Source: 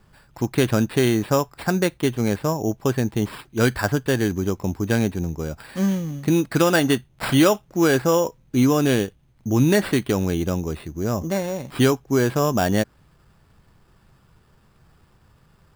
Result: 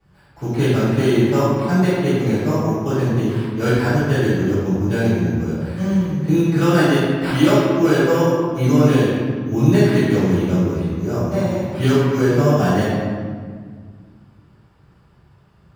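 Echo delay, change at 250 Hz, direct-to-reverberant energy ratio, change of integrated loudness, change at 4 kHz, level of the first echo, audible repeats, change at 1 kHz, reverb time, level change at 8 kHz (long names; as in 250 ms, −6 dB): no echo audible, +4.5 dB, −16.5 dB, +4.0 dB, 0.0 dB, no echo audible, no echo audible, +2.5 dB, 1.8 s, −4.5 dB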